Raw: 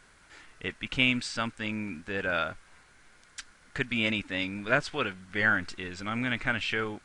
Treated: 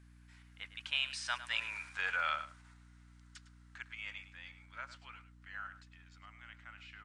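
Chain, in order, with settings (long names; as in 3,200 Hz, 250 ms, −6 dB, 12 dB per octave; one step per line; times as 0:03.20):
source passing by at 0:01.79, 24 m/s, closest 6.3 metres
high-pass filter 840 Hz 24 dB per octave
in parallel at +1.5 dB: output level in coarse steps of 10 dB
on the sum: slap from a distant wall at 18 metres, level −13 dB
mains hum 60 Hz, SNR 16 dB
level −2.5 dB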